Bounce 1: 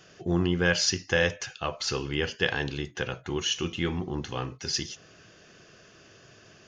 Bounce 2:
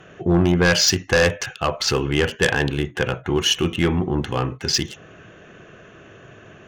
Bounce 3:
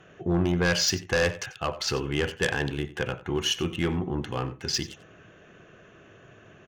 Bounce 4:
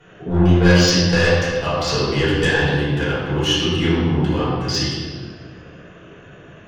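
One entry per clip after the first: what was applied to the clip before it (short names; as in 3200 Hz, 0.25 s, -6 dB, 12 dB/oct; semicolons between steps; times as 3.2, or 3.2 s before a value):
Wiener smoothing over 9 samples; sine folder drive 7 dB, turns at -10 dBFS
echo 91 ms -17 dB; gain -7.5 dB
reverb RT60 1.6 s, pre-delay 4 ms, DRR -10 dB; gain -2.5 dB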